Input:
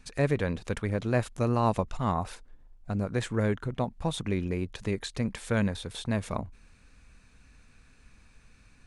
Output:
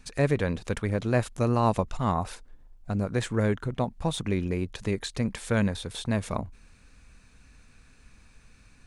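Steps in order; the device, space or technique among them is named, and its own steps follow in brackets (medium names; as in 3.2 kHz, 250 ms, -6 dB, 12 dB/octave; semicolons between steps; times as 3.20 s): exciter from parts (in parallel at -12.5 dB: high-pass 3.3 kHz + saturation -38 dBFS, distortion -12 dB); on the sum: trim +2 dB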